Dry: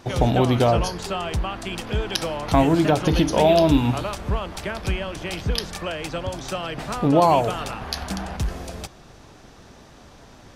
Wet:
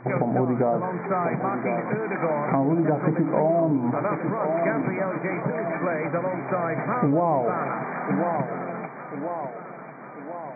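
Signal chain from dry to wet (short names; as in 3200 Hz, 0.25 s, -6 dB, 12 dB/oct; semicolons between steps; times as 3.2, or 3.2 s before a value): treble ducked by the level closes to 860 Hz, closed at -13 dBFS; on a send: thinning echo 1.042 s, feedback 59%, high-pass 220 Hz, level -11 dB; on the sum: compressor 10:1, threshold -21 dBFS, peak gain reduction 9.5 dB; in parallel at -12 dB: hard clip -21.5 dBFS, distortion -15 dB; on the sum: FFT band-pass 120–2400 Hz; ending taper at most 490 dB/s; gain +2 dB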